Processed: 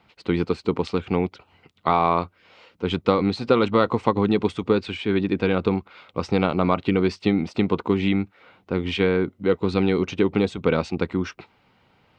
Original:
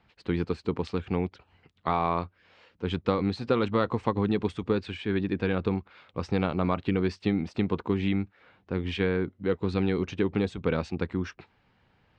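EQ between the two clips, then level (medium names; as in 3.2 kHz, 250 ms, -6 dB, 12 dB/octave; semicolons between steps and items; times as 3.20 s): bass shelf 97 Hz -11.5 dB; band-stop 1.7 kHz, Q 7.2; +7.5 dB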